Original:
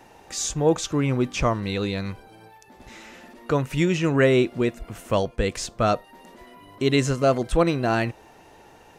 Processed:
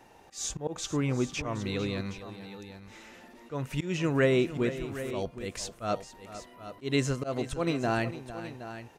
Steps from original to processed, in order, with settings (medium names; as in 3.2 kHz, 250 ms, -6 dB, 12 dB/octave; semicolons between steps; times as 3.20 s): slow attack 149 ms; multi-tap echo 451/769 ms -13.5/-13 dB; trim -6 dB